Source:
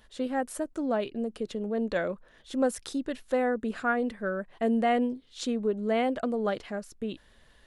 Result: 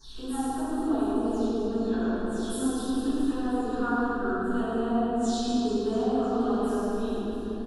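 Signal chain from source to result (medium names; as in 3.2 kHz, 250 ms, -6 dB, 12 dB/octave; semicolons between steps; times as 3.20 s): delay that grows with frequency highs early, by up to 204 ms; dynamic bell 2.3 kHz, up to -7 dB, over -54 dBFS, Q 2.9; compression 3:1, threshold -35 dBFS, peak gain reduction 10.5 dB; static phaser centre 560 Hz, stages 6; hum 50 Hz, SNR 18 dB; reverse bouncing-ball echo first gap 110 ms, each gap 1.3×, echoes 5; reverberation RT60 2.9 s, pre-delay 3 ms, DRR -18.5 dB; trim -8.5 dB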